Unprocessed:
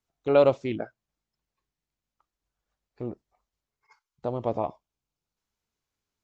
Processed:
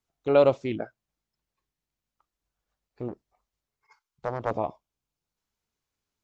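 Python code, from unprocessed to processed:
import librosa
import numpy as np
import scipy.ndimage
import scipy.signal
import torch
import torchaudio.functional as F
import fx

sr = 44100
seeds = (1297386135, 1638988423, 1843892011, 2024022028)

y = fx.doppler_dist(x, sr, depth_ms=0.65, at=(3.08, 4.51))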